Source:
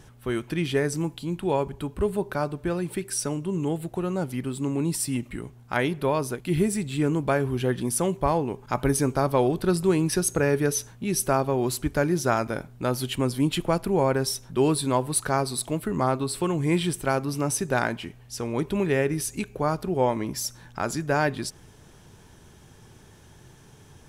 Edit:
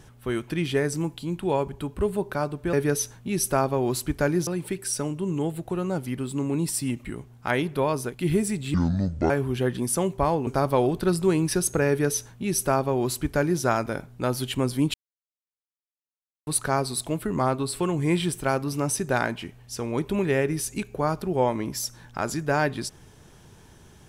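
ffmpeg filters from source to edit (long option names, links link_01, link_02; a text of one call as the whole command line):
ffmpeg -i in.wav -filter_complex "[0:a]asplit=8[link_01][link_02][link_03][link_04][link_05][link_06][link_07][link_08];[link_01]atrim=end=2.732[link_09];[link_02]atrim=start=10.488:end=12.232[link_10];[link_03]atrim=start=2.728:end=7.004[link_11];[link_04]atrim=start=7:end=7.33,asetpts=PTS-STARTPTS,asetrate=26019,aresample=44100,atrim=end_sample=24666,asetpts=PTS-STARTPTS[link_12];[link_05]atrim=start=7.326:end=8.502[link_13];[link_06]atrim=start=9.078:end=13.55,asetpts=PTS-STARTPTS,afade=type=out:start_time=4.468:duration=0.004:curve=hsin[link_14];[link_07]atrim=start=13.55:end=15.08,asetpts=PTS-STARTPTS,volume=0[link_15];[link_08]atrim=start=15.08,asetpts=PTS-STARTPTS,afade=type=in:duration=0.004:curve=hsin[link_16];[link_09][link_10]acrossfade=duration=0.004:curve1=hsin:curve2=hsin[link_17];[link_17][link_11]acrossfade=duration=0.004:curve1=hsin:curve2=hsin[link_18];[link_18][link_12]acrossfade=duration=0.004:curve1=hsin:curve2=hsin[link_19];[link_19][link_13]acrossfade=duration=0.004:curve1=hsin:curve2=hsin[link_20];[link_14][link_15][link_16]concat=n=3:v=0:a=1[link_21];[link_20][link_21]acrossfade=duration=0.004:curve1=hsin:curve2=hsin" out.wav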